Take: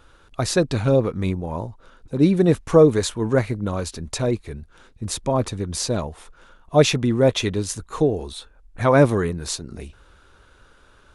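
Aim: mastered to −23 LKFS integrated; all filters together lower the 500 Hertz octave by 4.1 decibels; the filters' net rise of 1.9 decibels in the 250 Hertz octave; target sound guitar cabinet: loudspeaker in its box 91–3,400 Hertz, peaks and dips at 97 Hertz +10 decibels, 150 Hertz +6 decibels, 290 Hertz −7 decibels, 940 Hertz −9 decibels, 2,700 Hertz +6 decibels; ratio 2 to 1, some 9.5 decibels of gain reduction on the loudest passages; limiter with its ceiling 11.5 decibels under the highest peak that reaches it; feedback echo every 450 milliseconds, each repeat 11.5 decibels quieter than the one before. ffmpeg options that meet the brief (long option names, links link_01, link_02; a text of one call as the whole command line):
ffmpeg -i in.wav -af "equalizer=frequency=250:width_type=o:gain=6,equalizer=frequency=500:width_type=o:gain=-5.5,acompressor=threshold=-26dB:ratio=2,alimiter=limit=-21.5dB:level=0:latency=1,highpass=91,equalizer=frequency=97:width_type=q:width=4:gain=10,equalizer=frequency=150:width_type=q:width=4:gain=6,equalizer=frequency=290:width_type=q:width=4:gain=-7,equalizer=frequency=940:width_type=q:width=4:gain=-9,equalizer=frequency=2700:width_type=q:width=4:gain=6,lowpass=frequency=3400:width=0.5412,lowpass=frequency=3400:width=1.3066,aecho=1:1:450|900|1350:0.266|0.0718|0.0194,volume=8dB" out.wav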